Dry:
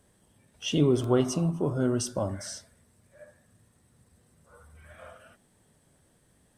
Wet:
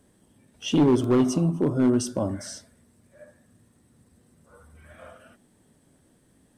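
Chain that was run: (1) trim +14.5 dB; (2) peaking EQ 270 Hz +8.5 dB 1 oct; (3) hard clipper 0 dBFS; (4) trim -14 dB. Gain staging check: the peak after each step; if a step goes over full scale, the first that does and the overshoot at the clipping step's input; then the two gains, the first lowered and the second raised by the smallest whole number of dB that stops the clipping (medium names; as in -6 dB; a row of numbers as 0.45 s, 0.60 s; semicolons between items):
+4.0 dBFS, +8.5 dBFS, 0.0 dBFS, -14.0 dBFS; step 1, 8.5 dB; step 1 +5.5 dB, step 4 -5 dB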